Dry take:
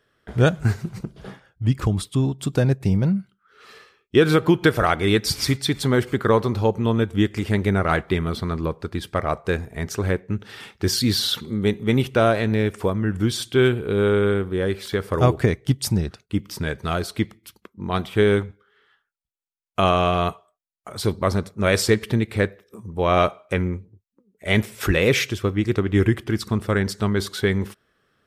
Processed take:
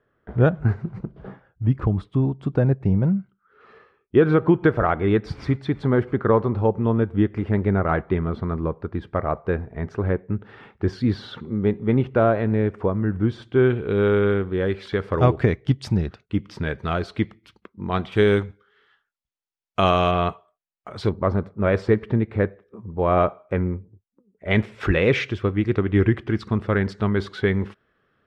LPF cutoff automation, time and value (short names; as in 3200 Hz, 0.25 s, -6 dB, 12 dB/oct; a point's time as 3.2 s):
1400 Hz
from 13.7 s 3000 Hz
from 18.12 s 5800 Hz
from 20.11 s 3100 Hz
from 21.09 s 1400 Hz
from 24.51 s 2600 Hz